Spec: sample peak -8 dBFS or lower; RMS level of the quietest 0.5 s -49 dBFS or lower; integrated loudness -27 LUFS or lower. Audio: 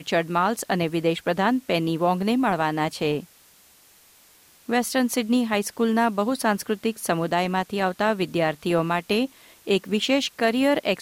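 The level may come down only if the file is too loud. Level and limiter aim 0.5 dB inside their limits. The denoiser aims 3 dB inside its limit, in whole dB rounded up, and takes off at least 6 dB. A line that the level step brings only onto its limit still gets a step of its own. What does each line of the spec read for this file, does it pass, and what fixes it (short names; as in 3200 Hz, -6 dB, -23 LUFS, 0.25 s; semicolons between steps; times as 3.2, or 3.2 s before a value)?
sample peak -9.0 dBFS: OK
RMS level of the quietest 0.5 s -55 dBFS: OK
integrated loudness -23.5 LUFS: fail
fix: gain -4 dB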